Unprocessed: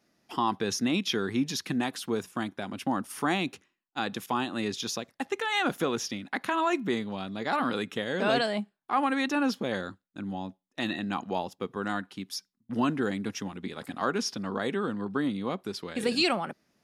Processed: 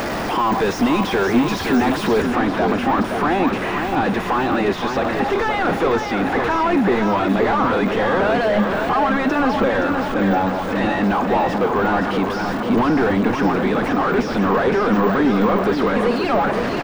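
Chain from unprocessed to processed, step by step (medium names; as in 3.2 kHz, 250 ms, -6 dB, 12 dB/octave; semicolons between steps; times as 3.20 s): jump at every zero crossing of -32.5 dBFS; tilt EQ +1.5 dB/octave; overdrive pedal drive 36 dB, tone 1.6 kHz, clips at -11 dBFS; feedback delay 521 ms, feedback 56%, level -6 dB; de-esser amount 95%; treble shelf 6.2 kHz +6 dB, from 2.22 s -7 dB; trim +4 dB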